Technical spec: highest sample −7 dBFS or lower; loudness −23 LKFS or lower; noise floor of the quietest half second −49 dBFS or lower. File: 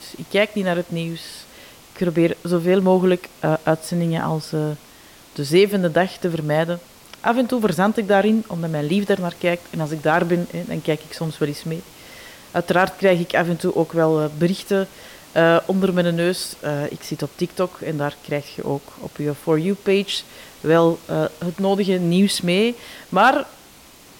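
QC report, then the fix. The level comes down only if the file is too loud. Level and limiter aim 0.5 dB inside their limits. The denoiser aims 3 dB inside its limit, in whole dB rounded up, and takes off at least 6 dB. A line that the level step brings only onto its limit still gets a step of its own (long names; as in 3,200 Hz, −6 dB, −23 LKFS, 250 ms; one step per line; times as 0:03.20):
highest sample −5.5 dBFS: out of spec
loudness −20.5 LKFS: out of spec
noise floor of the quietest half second −46 dBFS: out of spec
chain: broadband denoise 6 dB, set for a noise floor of −46 dBFS
level −3 dB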